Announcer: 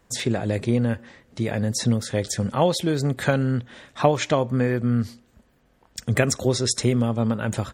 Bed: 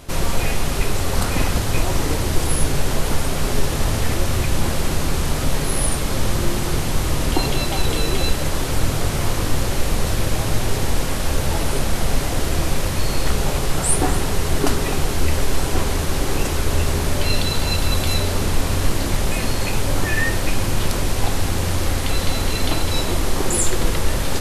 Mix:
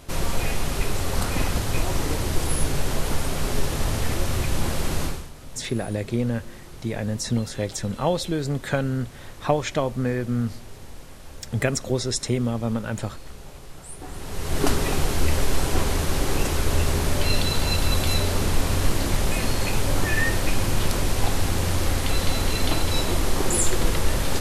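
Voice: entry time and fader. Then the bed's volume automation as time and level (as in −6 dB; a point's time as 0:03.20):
5.45 s, −3.0 dB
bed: 0:05.05 −4.5 dB
0:05.31 −21.5 dB
0:13.97 −21.5 dB
0:14.64 −2.5 dB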